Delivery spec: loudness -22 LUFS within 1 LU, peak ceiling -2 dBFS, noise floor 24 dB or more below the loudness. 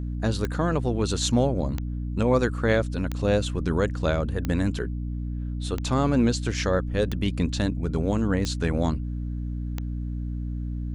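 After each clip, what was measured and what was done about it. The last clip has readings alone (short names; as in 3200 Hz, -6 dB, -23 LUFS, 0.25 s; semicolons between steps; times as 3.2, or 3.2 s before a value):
clicks 8; hum 60 Hz; harmonics up to 300 Hz; hum level -27 dBFS; loudness -26.0 LUFS; peak -9.0 dBFS; loudness target -22.0 LUFS
-> de-click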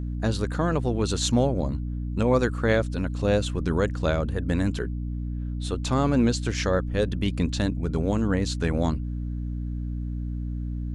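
clicks 0; hum 60 Hz; harmonics up to 300 Hz; hum level -27 dBFS
-> notches 60/120/180/240/300 Hz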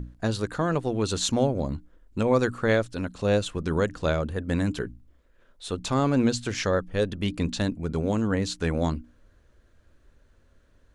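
hum none; loudness -26.5 LUFS; peak -10.0 dBFS; loudness target -22.0 LUFS
-> gain +4.5 dB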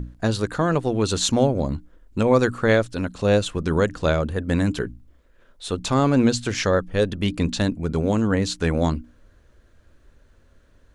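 loudness -22.0 LUFS; peak -5.5 dBFS; noise floor -57 dBFS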